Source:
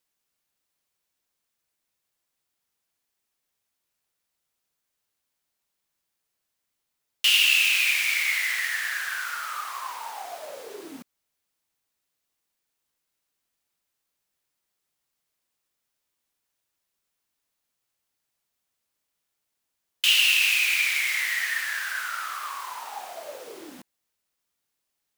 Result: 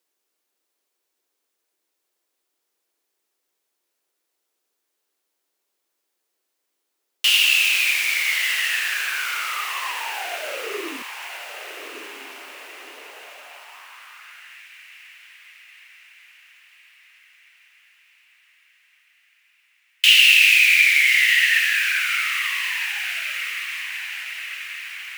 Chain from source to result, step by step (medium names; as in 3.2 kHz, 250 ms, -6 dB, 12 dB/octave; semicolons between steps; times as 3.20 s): echo that smears into a reverb 1177 ms, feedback 57%, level -9 dB; high-pass sweep 360 Hz -> 2 kHz, 12.84–14.68 s; trim +2.5 dB